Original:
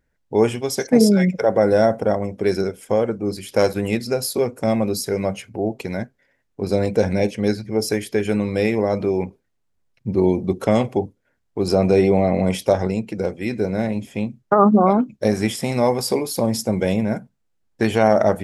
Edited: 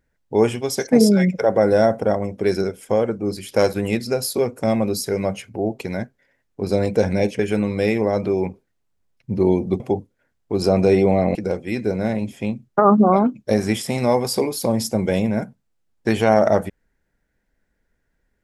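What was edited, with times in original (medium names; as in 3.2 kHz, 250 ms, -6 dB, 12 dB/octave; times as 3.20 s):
7.39–8.16 s: delete
10.57–10.86 s: delete
12.41–13.09 s: delete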